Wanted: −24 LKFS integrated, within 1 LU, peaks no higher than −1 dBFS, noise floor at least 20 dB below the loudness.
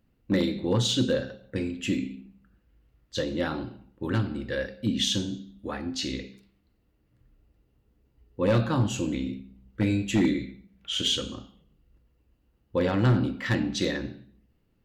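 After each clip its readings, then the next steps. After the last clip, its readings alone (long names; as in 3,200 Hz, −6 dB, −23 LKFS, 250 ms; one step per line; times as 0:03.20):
share of clipped samples 0.3%; peaks flattened at −16.0 dBFS; integrated loudness −28.0 LKFS; sample peak −16.0 dBFS; target loudness −24.0 LKFS
→ clipped peaks rebuilt −16 dBFS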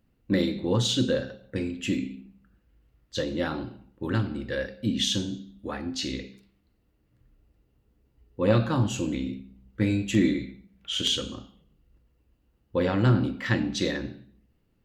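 share of clipped samples 0.0%; integrated loudness −27.5 LKFS; sample peak −7.5 dBFS; target loudness −24.0 LKFS
→ level +3.5 dB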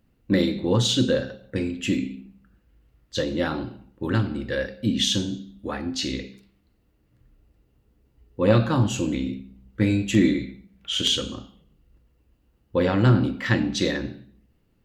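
integrated loudness −24.0 LKFS; sample peak −4.0 dBFS; background noise floor −66 dBFS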